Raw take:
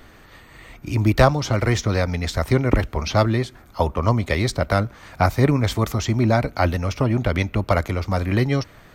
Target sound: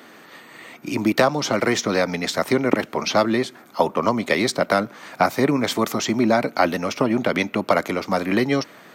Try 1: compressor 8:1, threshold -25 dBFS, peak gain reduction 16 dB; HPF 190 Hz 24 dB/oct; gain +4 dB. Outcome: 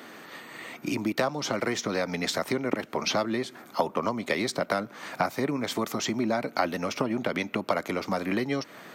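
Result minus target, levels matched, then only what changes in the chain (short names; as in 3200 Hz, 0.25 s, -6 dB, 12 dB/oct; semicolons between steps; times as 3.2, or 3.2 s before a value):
compressor: peak gain reduction +9.5 dB
change: compressor 8:1, threshold -14 dBFS, peak gain reduction 6.5 dB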